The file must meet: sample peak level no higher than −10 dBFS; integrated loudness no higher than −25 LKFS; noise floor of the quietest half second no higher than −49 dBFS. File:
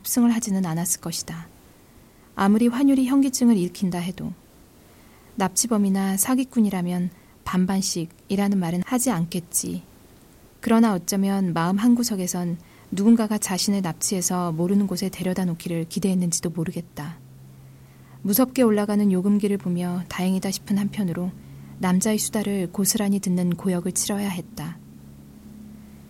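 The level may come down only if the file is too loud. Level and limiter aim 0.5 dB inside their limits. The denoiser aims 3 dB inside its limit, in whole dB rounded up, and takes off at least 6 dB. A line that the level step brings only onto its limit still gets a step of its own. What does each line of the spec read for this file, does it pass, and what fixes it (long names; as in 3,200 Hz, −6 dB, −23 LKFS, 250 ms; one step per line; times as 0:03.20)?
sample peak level −7.0 dBFS: out of spec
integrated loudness −22.5 LKFS: out of spec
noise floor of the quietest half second −51 dBFS: in spec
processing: level −3 dB
brickwall limiter −10.5 dBFS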